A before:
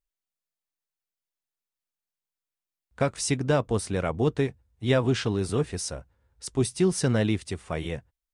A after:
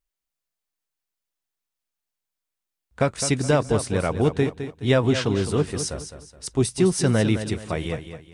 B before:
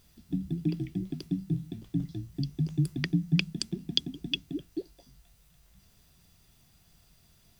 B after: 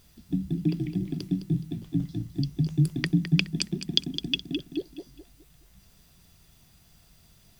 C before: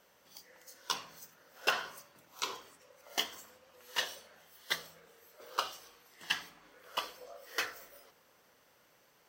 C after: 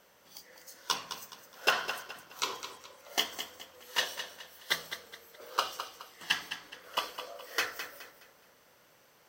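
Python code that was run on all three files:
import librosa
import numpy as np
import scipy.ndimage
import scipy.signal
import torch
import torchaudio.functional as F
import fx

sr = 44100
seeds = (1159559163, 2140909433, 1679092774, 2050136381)

y = fx.echo_feedback(x, sr, ms=210, feedback_pct=34, wet_db=-10.0)
y = F.gain(torch.from_numpy(y), 3.5).numpy()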